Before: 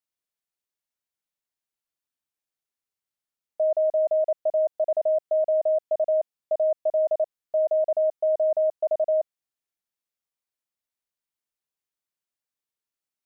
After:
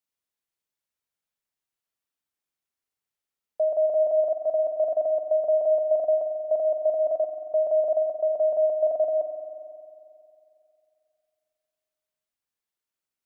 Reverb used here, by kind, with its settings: spring tank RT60 2.6 s, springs 45 ms, chirp 65 ms, DRR 3.5 dB

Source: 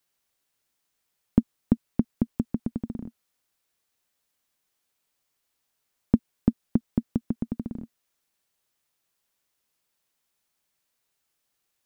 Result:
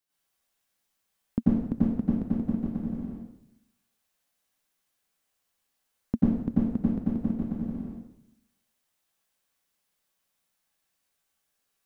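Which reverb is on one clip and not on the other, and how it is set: plate-style reverb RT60 0.84 s, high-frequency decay 0.9×, pre-delay 80 ms, DRR -9 dB; trim -9 dB

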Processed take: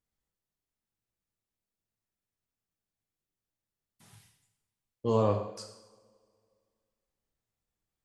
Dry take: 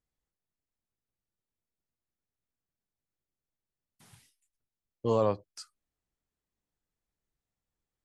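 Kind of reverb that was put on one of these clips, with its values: two-slope reverb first 0.79 s, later 2.3 s, from -21 dB, DRR 2.5 dB; trim -1.5 dB

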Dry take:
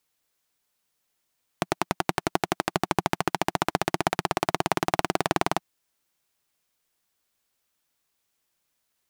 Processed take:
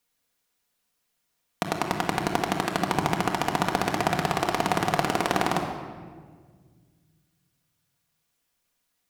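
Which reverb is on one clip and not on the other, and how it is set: simulated room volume 2000 m³, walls mixed, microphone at 1.8 m; trim -1.5 dB

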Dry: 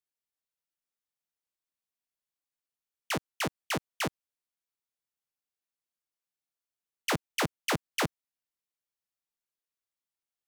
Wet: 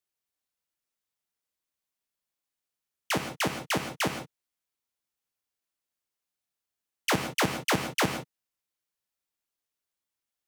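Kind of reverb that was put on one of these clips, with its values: gated-style reverb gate 190 ms flat, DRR 6.5 dB; trim +3 dB

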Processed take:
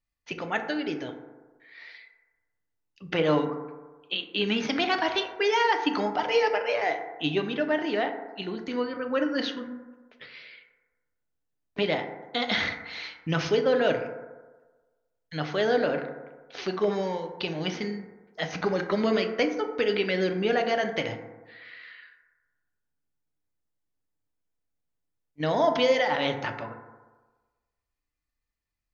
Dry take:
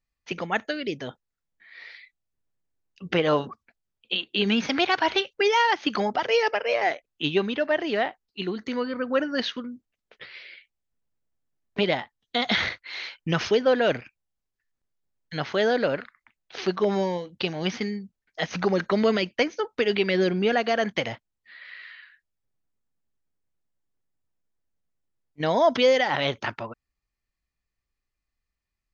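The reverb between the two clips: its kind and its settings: FDN reverb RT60 1.3 s, low-frequency decay 0.85×, high-frequency decay 0.3×, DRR 4.5 dB; trim -3.5 dB

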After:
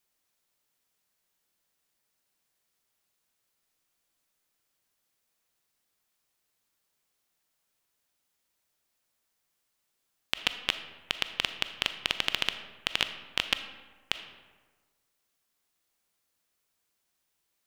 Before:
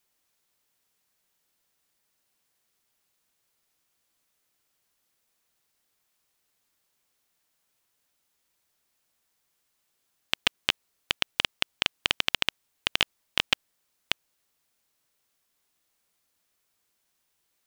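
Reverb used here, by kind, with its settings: algorithmic reverb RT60 1.4 s, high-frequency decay 0.55×, pre-delay 0 ms, DRR 9 dB; trim -3.5 dB

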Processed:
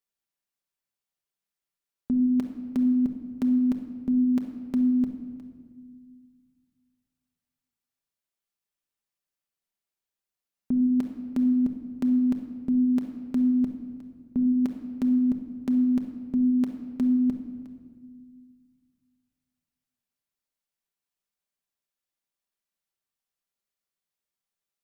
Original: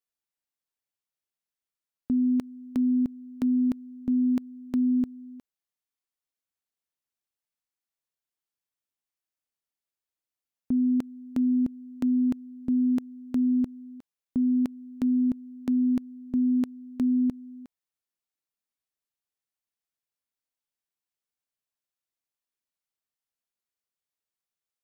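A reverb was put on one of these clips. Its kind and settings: simulated room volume 2000 m³, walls mixed, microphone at 1.2 m

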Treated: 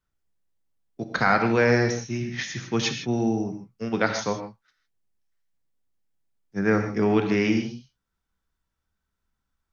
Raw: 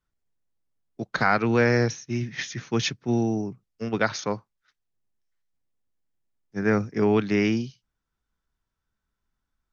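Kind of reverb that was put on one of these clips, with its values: gated-style reverb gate 180 ms flat, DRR 5 dB

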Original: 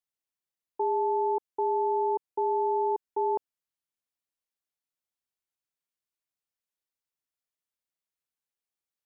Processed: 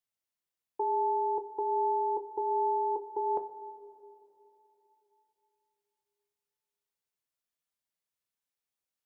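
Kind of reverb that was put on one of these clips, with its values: two-slope reverb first 0.25 s, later 3.3 s, from -18 dB, DRR 5.5 dB; trim -1 dB

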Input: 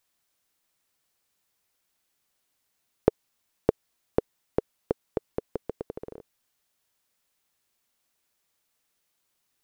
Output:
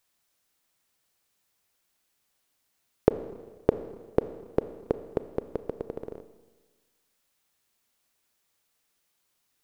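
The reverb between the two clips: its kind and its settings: Schroeder reverb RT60 1.4 s, combs from 27 ms, DRR 11.5 dB; trim +1 dB

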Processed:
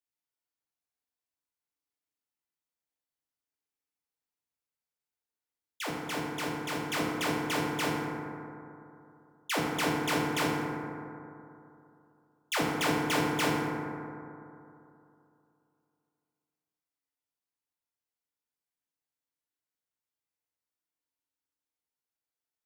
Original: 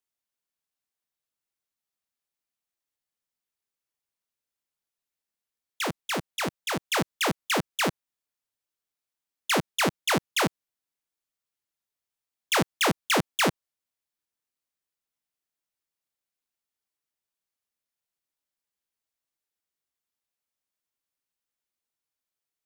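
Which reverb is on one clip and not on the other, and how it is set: FDN reverb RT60 2.8 s, high-frequency decay 0.3×, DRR -3.5 dB; trim -9 dB

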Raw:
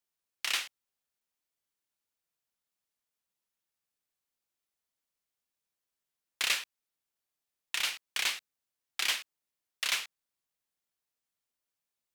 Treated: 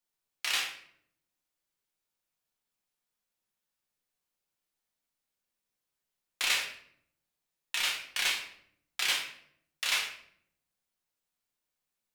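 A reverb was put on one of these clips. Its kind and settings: simulated room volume 120 m³, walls mixed, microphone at 0.96 m; trim -1.5 dB

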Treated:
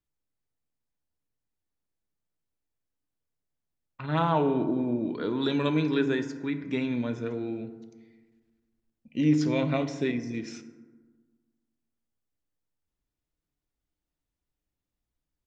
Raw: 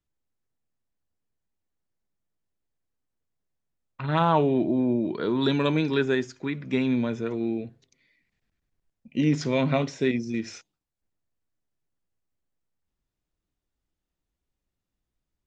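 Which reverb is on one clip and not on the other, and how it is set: FDN reverb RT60 1.4 s, low-frequency decay 1.2×, high-frequency decay 0.4×, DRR 8.5 dB; trim -4 dB

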